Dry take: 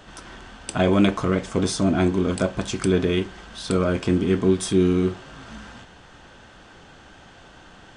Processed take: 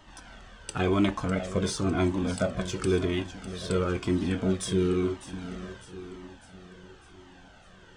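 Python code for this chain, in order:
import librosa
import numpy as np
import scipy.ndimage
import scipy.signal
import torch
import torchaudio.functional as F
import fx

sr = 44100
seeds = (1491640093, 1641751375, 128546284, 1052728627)

p1 = fx.echo_feedback(x, sr, ms=602, feedback_pct=54, wet_db=-12.0)
p2 = np.sign(p1) * np.maximum(np.abs(p1) - 10.0 ** (-34.5 / 20.0), 0.0)
p3 = p1 + (p2 * librosa.db_to_amplitude(-11.0))
p4 = fx.comb_cascade(p3, sr, direction='falling', hz=0.97)
y = p4 * librosa.db_to_amplitude(-3.0)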